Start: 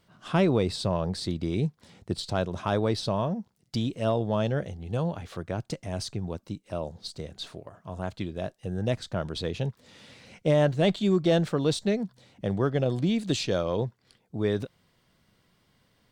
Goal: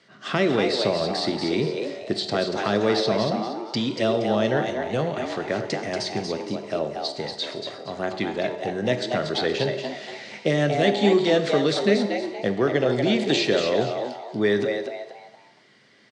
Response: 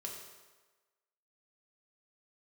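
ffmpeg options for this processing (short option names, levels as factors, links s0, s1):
-filter_complex "[0:a]acrossover=split=430|3800[s0][s1][s2];[s0]acompressor=threshold=0.0398:ratio=4[s3];[s1]acompressor=threshold=0.0251:ratio=4[s4];[s2]acompressor=threshold=0.00631:ratio=4[s5];[s3][s4][s5]amix=inputs=3:normalize=0,highpass=f=150:w=0.5412,highpass=f=150:w=1.3066,equalizer=f=170:t=q:w=4:g=-8,equalizer=f=940:t=q:w=4:g=-7,equalizer=f=1900:t=q:w=4:g=9,equalizer=f=4500:t=q:w=4:g=3,lowpass=f=7300:w=0.5412,lowpass=f=7300:w=1.3066,asplit=5[s6][s7][s8][s9][s10];[s7]adelay=235,afreqshift=120,volume=0.501[s11];[s8]adelay=470,afreqshift=240,volume=0.166[s12];[s9]adelay=705,afreqshift=360,volume=0.0543[s13];[s10]adelay=940,afreqshift=480,volume=0.018[s14];[s6][s11][s12][s13][s14]amix=inputs=5:normalize=0,asplit=2[s15][s16];[1:a]atrim=start_sample=2205,afade=t=out:st=0.38:d=0.01,atrim=end_sample=17199[s17];[s16][s17]afir=irnorm=-1:irlink=0,volume=1[s18];[s15][s18]amix=inputs=2:normalize=0,volume=1.78" -ar 24000 -c:a libmp3lame -b:a 160k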